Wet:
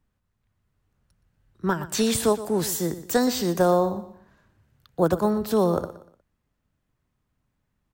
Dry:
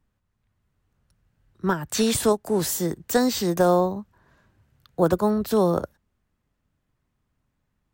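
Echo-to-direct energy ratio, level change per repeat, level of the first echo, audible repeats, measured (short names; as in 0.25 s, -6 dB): -14.0 dB, -10.0 dB, -14.5 dB, 3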